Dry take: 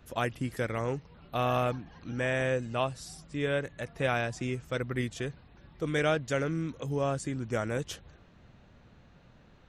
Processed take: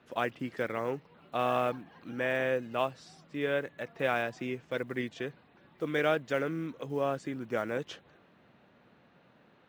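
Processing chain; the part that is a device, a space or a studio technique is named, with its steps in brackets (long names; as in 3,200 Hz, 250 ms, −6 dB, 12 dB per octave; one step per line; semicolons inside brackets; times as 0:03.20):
early digital voice recorder (band-pass filter 220–3,500 Hz; one scale factor per block 7 bits)
0:04.45–0:05.22: notch filter 1,300 Hz, Q 9.7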